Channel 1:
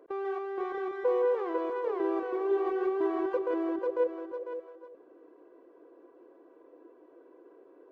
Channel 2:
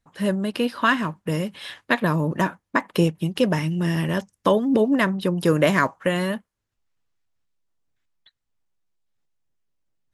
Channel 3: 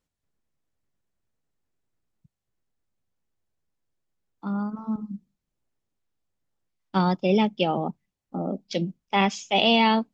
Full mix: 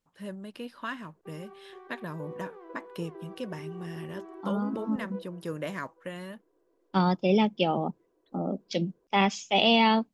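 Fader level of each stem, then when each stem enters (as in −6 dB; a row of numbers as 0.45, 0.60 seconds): −15.0, −16.5, −2.0 decibels; 1.15, 0.00, 0.00 seconds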